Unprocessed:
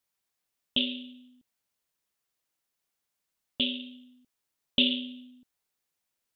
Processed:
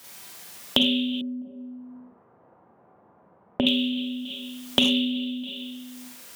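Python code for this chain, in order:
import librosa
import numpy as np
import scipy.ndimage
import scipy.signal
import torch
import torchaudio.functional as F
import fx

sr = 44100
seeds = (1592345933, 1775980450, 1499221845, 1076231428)

p1 = fx.block_float(x, sr, bits=7)
p2 = p1 + fx.echo_feedback(p1, sr, ms=327, feedback_pct=32, wet_db=-23, dry=0)
p3 = fx.rev_schroeder(p2, sr, rt60_s=0.43, comb_ms=32, drr_db=-3.5)
p4 = fx.rider(p3, sr, range_db=10, speed_s=0.5)
p5 = p3 + F.gain(torch.from_numpy(p4), 1.5).numpy()
p6 = fx.lowpass(p5, sr, hz=1000.0, slope=24, at=(1.21, 3.67))
p7 = np.clip(p6, -10.0 ** (-7.5 / 20.0), 10.0 ** (-7.5 / 20.0))
p8 = scipy.signal.sosfilt(scipy.signal.butter(4, 91.0, 'highpass', fs=sr, output='sos'), p7)
p9 = fx.band_squash(p8, sr, depth_pct=100)
y = F.gain(torch.from_numpy(p9), -2.0).numpy()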